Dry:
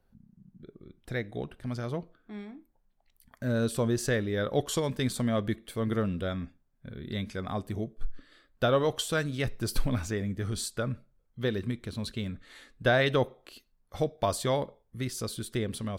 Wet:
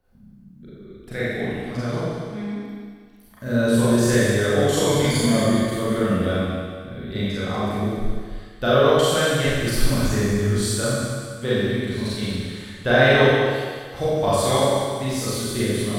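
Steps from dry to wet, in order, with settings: 4.86–5.28 s: rippled EQ curve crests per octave 1.8, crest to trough 15 dB; thinning echo 191 ms, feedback 45%, high-pass 420 Hz, level -8.5 dB; Schroeder reverb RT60 1.6 s, combs from 30 ms, DRR -9.5 dB

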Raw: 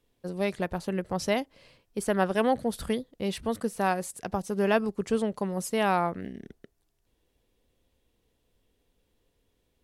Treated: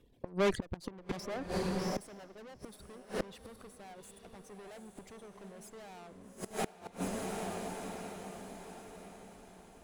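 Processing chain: resonances exaggerated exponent 1.5; reverb removal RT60 1.1 s; valve stage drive 38 dB, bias 0.7; on a send: echo that smears into a reverb 808 ms, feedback 46%, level -6 dB; on the sum: inverted gate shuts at -35 dBFS, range -24 dB; 1.09–1.98 s: three bands compressed up and down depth 100%; trim +13 dB

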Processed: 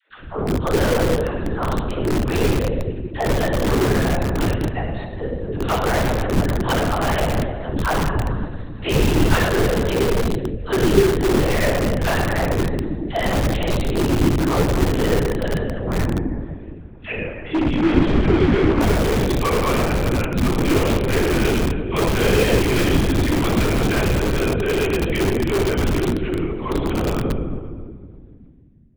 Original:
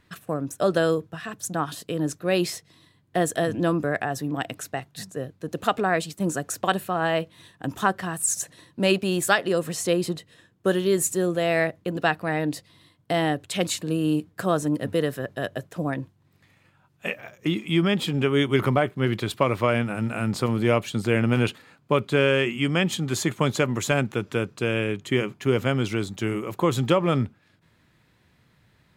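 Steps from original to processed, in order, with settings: fade out at the end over 4.43 s; high-pass 170 Hz 24 dB/octave; bass shelf 260 Hz +11 dB; simulated room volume 2600 m³, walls mixed, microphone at 3.6 m; LPC vocoder at 8 kHz whisper; phase dispersion lows, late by 102 ms, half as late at 490 Hz; in parallel at -6 dB: integer overflow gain 11 dB; 17.23–18.81 s: on the sum: low-pass 2.5 kHz 12 dB/octave; trim -5 dB

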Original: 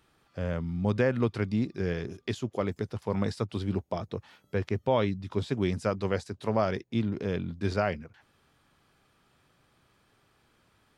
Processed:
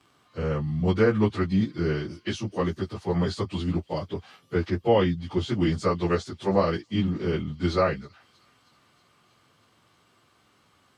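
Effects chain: frequency-domain pitch shifter -2 st; high-pass 100 Hz; peaking EQ 5 kHz +4 dB 0.92 oct; small resonant body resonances 1.2/3.2 kHz, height 7 dB; on a send: feedback echo behind a high-pass 318 ms, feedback 67%, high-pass 3.7 kHz, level -20 dB; on the sum: trim +6.5 dB

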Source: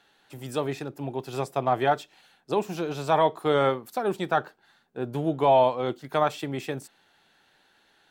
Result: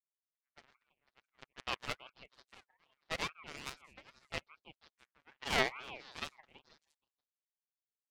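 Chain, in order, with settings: comb filter that takes the minimum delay 7.9 ms; level-controlled noise filter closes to 400 Hz, open at -22.5 dBFS; peaking EQ 220 Hz -10.5 dB 2.6 oct; power-law waveshaper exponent 3; repeats whose band climbs or falls 164 ms, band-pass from 410 Hz, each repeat 1.4 oct, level -10.5 dB; ring modulator with a swept carrier 1.6 kHz, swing 20%, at 2.4 Hz; trim +3 dB

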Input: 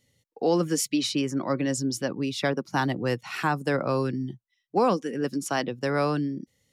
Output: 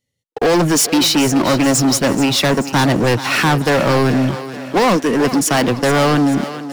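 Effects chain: waveshaping leveller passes 5; thinning echo 432 ms, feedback 54%, high-pass 230 Hz, level -12 dB; trim +1.5 dB

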